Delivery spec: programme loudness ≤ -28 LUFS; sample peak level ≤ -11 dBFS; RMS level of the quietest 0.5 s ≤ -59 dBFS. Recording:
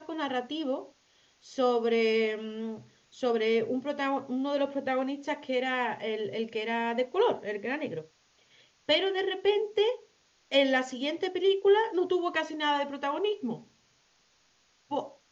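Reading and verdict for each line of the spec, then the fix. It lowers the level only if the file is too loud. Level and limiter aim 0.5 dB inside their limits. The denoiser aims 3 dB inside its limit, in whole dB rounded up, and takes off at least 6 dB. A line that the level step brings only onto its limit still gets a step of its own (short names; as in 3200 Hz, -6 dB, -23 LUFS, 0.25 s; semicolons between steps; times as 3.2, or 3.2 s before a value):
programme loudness -29.5 LUFS: OK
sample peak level -12.0 dBFS: OK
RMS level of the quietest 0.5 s -67 dBFS: OK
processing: none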